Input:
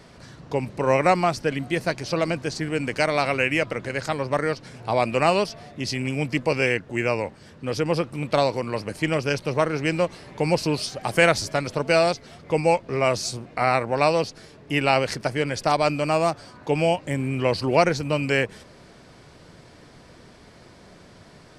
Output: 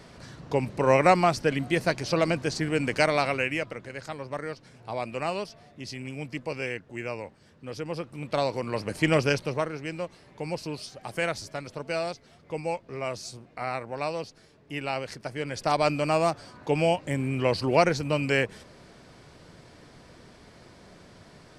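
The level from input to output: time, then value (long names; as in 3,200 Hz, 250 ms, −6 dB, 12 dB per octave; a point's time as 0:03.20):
0:03.04 −0.5 dB
0:03.87 −10.5 dB
0:07.94 −10.5 dB
0:09.20 +2 dB
0:09.81 −11 dB
0:15.20 −11 dB
0:15.81 −2.5 dB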